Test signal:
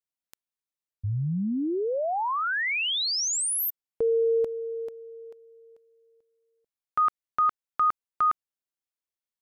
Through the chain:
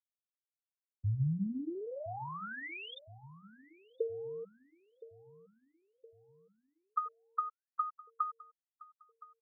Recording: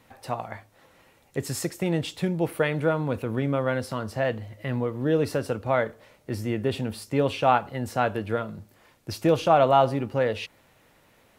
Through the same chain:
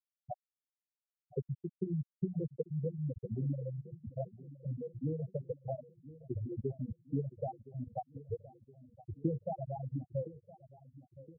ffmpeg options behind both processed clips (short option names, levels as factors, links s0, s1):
-filter_complex "[0:a]bandreject=f=60:t=h:w=6,bandreject=f=120:t=h:w=6,bandreject=f=180:t=h:w=6,bandreject=f=240:t=h:w=6,bandreject=f=300:t=h:w=6,acrossover=split=160[s0][s1];[s1]acompressor=threshold=0.0158:ratio=8:attack=77:release=256:knee=2.83:detection=peak[s2];[s0][s2]amix=inputs=2:normalize=0,afftfilt=real='re*gte(hypot(re,im),0.2)':imag='im*gte(hypot(re,im),0.2)':win_size=1024:overlap=0.75,asplit=2[s3][s4];[s4]adelay=1017,lowpass=f=1100:p=1,volume=0.141,asplit=2[s5][s6];[s6]adelay=1017,lowpass=f=1100:p=1,volume=0.53,asplit=2[s7][s8];[s8]adelay=1017,lowpass=f=1100:p=1,volume=0.53,asplit=2[s9][s10];[s10]adelay=1017,lowpass=f=1100:p=1,volume=0.53,asplit=2[s11][s12];[s12]adelay=1017,lowpass=f=1100:p=1,volume=0.53[s13];[s5][s7][s9][s11][s13]amix=inputs=5:normalize=0[s14];[s3][s14]amix=inputs=2:normalize=0,volume=0.75"